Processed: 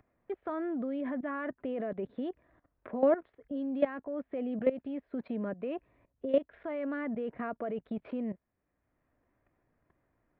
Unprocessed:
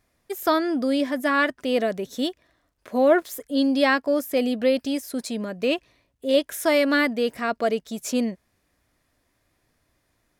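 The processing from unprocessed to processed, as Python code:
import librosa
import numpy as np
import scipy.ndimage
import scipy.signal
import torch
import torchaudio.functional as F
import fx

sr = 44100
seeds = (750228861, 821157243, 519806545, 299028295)

y = fx.level_steps(x, sr, step_db=17)
y = scipy.ndimage.gaussian_filter1d(y, 4.5, mode='constant')
y = fx.band_squash(y, sr, depth_pct=40)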